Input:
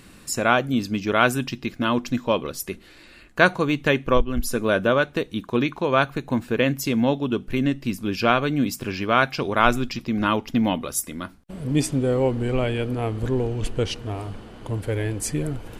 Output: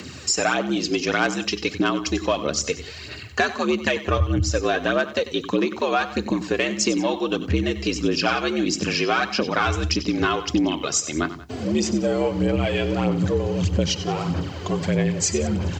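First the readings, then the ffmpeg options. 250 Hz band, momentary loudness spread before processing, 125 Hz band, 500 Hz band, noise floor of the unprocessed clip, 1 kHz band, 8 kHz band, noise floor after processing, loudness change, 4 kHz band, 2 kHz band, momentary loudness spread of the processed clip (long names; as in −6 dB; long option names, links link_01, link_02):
+0.5 dB, 10 LU, +0.5 dB, 0.0 dB, −49 dBFS, −1.5 dB, +6.0 dB, −37 dBFS, +0.5 dB, +4.5 dB, −0.5 dB, 4 LU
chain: -af "equalizer=frequency=5000:width_type=o:width=0.77:gain=2.5,aphaser=in_gain=1:out_gain=1:delay=3.1:decay=0.56:speed=1.6:type=sinusoidal,highshelf=frequency=3000:gain=8.5,aresample=16000,asoftclip=type=tanh:threshold=-4.5dB,aresample=44100,acompressor=threshold=-24dB:ratio=6,bandreject=frequency=3400:width=19,aecho=1:1:94|95|182:0.211|0.106|0.106,acontrast=30,afreqshift=68,acrusher=bits=10:mix=0:aa=0.000001"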